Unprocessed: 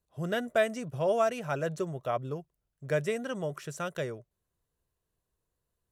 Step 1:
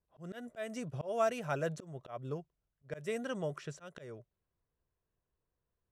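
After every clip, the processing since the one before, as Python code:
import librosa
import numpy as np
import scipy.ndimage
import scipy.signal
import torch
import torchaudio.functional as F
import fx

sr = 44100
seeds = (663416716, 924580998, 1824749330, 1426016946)

y = fx.env_lowpass(x, sr, base_hz=2300.0, full_db=-28.0)
y = fx.auto_swell(y, sr, attack_ms=229.0)
y = y * 10.0 ** (-3.0 / 20.0)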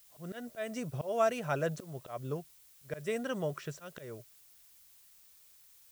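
y = fx.dmg_noise_colour(x, sr, seeds[0], colour='blue', level_db=-63.0)
y = y * 10.0 ** (2.5 / 20.0)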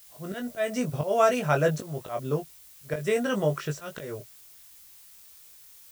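y = fx.doubler(x, sr, ms=20.0, db=-4.5)
y = y * 10.0 ** (7.5 / 20.0)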